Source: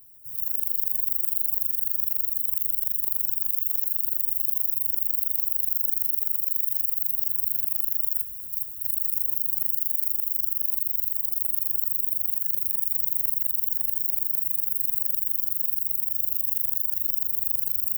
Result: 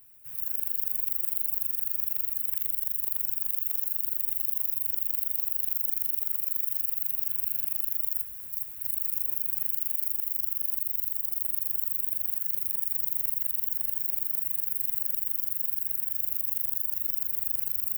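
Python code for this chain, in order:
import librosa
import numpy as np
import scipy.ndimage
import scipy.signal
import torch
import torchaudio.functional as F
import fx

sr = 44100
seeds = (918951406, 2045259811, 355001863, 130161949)

y = fx.peak_eq(x, sr, hz=2300.0, db=14.5, octaves=2.2)
y = F.gain(torch.from_numpy(y), -4.0).numpy()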